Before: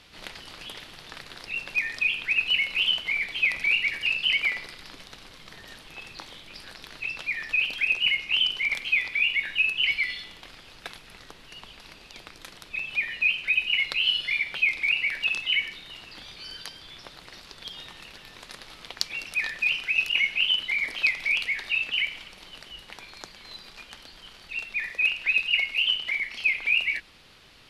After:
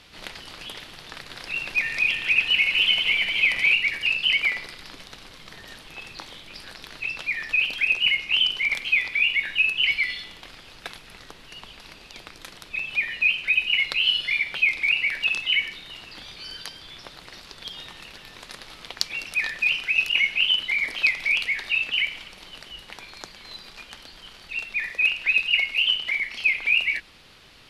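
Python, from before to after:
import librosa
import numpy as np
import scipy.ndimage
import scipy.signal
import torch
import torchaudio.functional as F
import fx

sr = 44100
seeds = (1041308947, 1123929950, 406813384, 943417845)

y = fx.reverse_delay_fb(x, sr, ms=151, feedback_pct=71, wet_db=-5.0, at=(1.14, 3.74))
y = F.gain(torch.from_numpy(y), 2.5).numpy()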